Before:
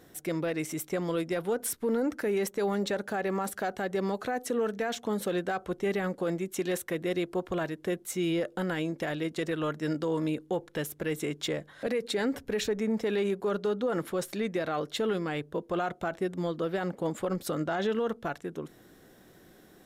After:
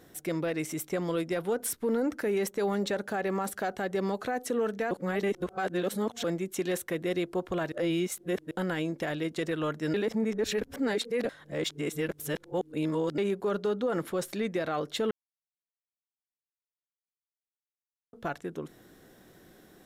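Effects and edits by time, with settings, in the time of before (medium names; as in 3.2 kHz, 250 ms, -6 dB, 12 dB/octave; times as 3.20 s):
4.91–6.24 s: reverse
7.72–8.51 s: reverse
9.94–13.18 s: reverse
15.11–18.13 s: mute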